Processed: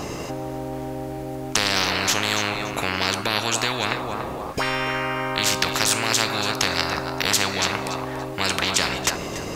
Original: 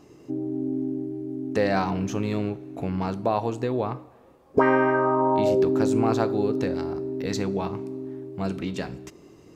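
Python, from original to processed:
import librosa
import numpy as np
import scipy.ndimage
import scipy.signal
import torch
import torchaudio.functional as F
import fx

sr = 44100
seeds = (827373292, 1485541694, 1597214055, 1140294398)

y = fx.echo_thinned(x, sr, ms=286, feedback_pct=26, hz=420.0, wet_db=-16.0)
y = fx.spectral_comp(y, sr, ratio=10.0)
y = y * librosa.db_to_amplitude(5.0)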